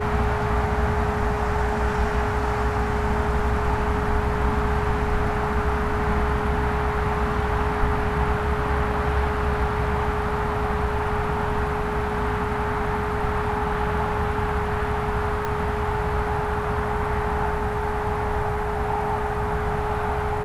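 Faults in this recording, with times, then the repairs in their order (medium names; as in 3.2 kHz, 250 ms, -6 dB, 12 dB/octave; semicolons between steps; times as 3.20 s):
whine 420 Hz -28 dBFS
15.45 s: pop -13 dBFS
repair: de-click; band-stop 420 Hz, Q 30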